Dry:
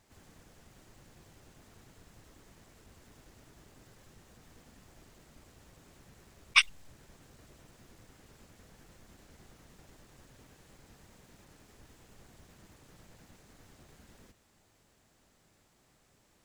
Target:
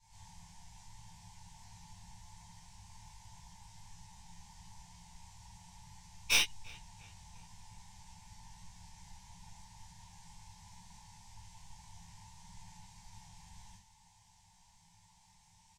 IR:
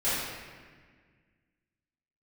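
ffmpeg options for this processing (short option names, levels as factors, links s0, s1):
-filter_complex "[0:a]firequalizer=gain_entry='entry(180,0);entry(250,-30);entry(530,-28);entry(870,11);entry(1200,-19);entry(1800,-5);entry(5600,6);entry(11000,-4);entry(15000,-20)':delay=0.05:min_phase=1,volume=15,asoftclip=hard,volume=0.0668,asplit=2[s0][s1];[s1]adelay=19,volume=0.473[s2];[s0][s2]amix=inputs=2:normalize=0,asplit=2[s3][s4];[s4]adelay=359,lowpass=f=2800:p=1,volume=0.0794,asplit=2[s5][s6];[s6]adelay=359,lowpass=f=2800:p=1,volume=0.53,asplit=2[s7][s8];[s8]adelay=359,lowpass=f=2800:p=1,volume=0.53,asplit=2[s9][s10];[s10]adelay=359,lowpass=f=2800:p=1,volume=0.53[s11];[s3][s5][s7][s9][s11]amix=inputs=5:normalize=0[s12];[1:a]atrim=start_sample=2205,atrim=end_sample=4410[s13];[s12][s13]afir=irnorm=-1:irlink=0,asetrate=45938,aresample=44100,volume=0.473"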